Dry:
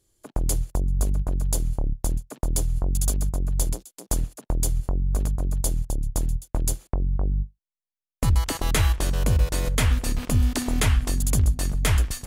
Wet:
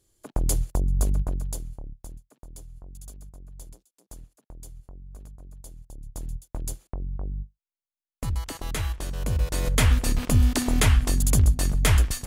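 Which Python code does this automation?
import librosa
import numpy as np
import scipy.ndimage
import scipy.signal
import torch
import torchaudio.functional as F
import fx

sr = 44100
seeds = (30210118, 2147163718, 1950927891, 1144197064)

y = fx.gain(x, sr, db=fx.line((1.21, 0.0), (1.68, -12.0), (2.4, -20.0), (5.78, -20.0), (6.33, -8.0), (9.11, -8.0), (9.8, 1.5)))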